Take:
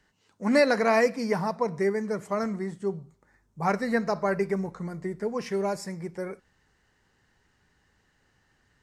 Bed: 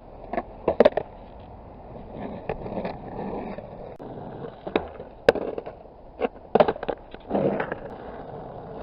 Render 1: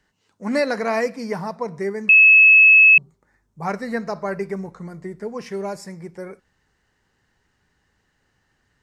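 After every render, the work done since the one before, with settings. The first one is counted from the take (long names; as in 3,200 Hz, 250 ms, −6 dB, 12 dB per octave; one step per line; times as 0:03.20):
0:02.09–0:02.98: beep over 2,590 Hz −7 dBFS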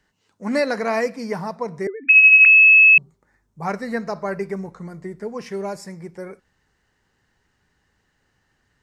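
0:01.87–0:02.46: three sine waves on the formant tracks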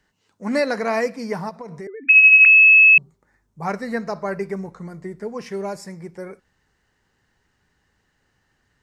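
0:01.49–0:01.99: downward compressor 10 to 1, threshold −30 dBFS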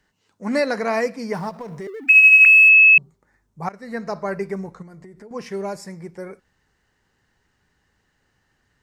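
0:01.34–0:02.69: mu-law and A-law mismatch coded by mu
0:03.69–0:04.12: fade in, from −21.5 dB
0:04.82–0:05.31: downward compressor 8 to 1, threshold −39 dBFS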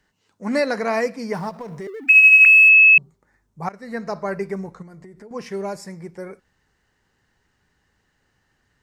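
no processing that can be heard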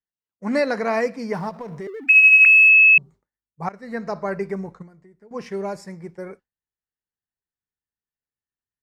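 downward expander −35 dBFS
high-shelf EQ 5,400 Hz −7 dB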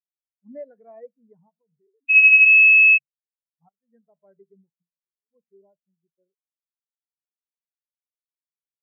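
every bin expanded away from the loudest bin 2.5 to 1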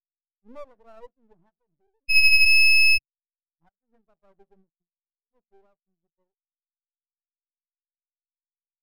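half-wave rectification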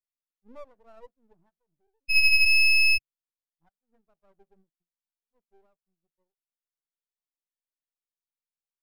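level −3.5 dB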